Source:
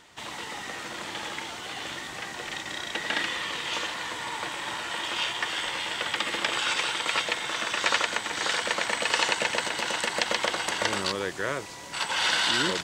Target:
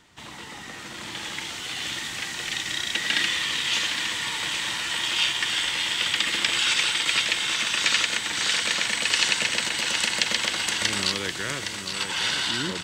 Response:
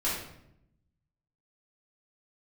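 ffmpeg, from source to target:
-filter_complex "[0:a]equalizer=f=540:w=0.93:g=-3.5,acrossover=split=330|1900[a][b][c];[a]acontrast=70[d];[b]alimiter=level_in=1dB:limit=-24dB:level=0:latency=1,volume=-1dB[e];[c]dynaudnorm=f=370:g=7:m=11.5dB[f];[d][e][f]amix=inputs=3:normalize=0,aecho=1:1:813:0.422,volume=-3dB"

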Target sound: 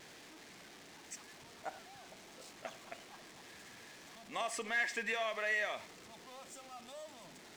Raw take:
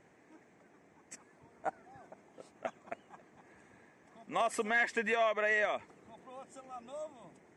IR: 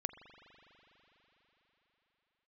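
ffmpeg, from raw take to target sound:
-filter_complex "[0:a]aeval=exprs='val(0)+0.5*0.00531*sgn(val(0))':c=same,equalizer=f=4.7k:w=0.44:g=11[a];[1:a]atrim=start_sample=2205,atrim=end_sample=6174,asetrate=57330,aresample=44100[b];[a][b]afir=irnorm=-1:irlink=0,volume=-6dB"

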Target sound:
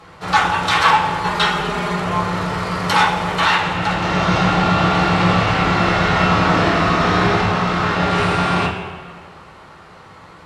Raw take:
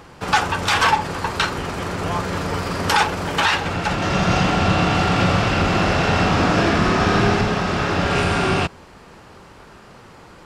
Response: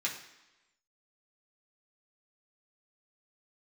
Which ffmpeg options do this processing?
-filter_complex "[0:a]asettb=1/sr,asplit=3[a][b][c];[a]atrim=end=1.244[d];[b]atrim=start=1.24:end=2,asetpts=PTS-STARTPTS,afade=t=in:d=0.004:c=qsin,afade=t=out:st=0.756:d=0.004:c=qsin,aecho=1:1:4.9:0.91,atrim=end_sample=33516[e];[c]atrim=start=1.996[f];[d][e]acrossfade=d=0.004:c1=hsin:c2=qsin[g];[g][f]acrossfade=d=0.004:c1=qsin:c2=hsin[h];[1:a]atrim=start_sample=2205,asetrate=23814,aresample=44100[i];[h][i]afir=irnorm=-1:irlink=0,volume=-6.5dB"

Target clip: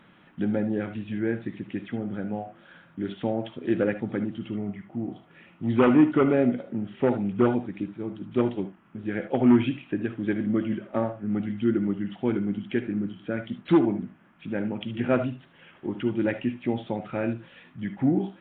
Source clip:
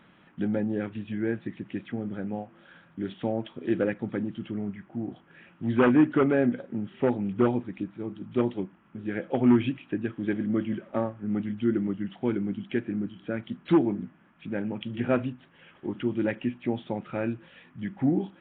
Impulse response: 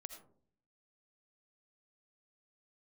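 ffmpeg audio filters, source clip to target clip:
-filter_complex "[0:a]asettb=1/sr,asplit=3[a][b][c];[a]atrim=end=4.444[d];[b]atrim=start=4.44:end=6.71,asetpts=PTS-STARTPTS,afade=t=in:d=0.004:c=qsin,afade=t=out:st=2.266:d=0.004:c=qsin,bandreject=f=1.6k:w=6.9[e];[c]atrim=start=6.706[f];[d][e]acrossfade=d=0.004:c1=hsin:c2=qsin[g];[g][f]acrossfade=d=0.004:c1=qsin:c2=hsin[h];[1:a]atrim=start_sample=2205,atrim=end_sample=3969,asetrate=48510,aresample=44100[i];[h][i]afir=irnorm=-1:irlink=0,volume=8.5dB"

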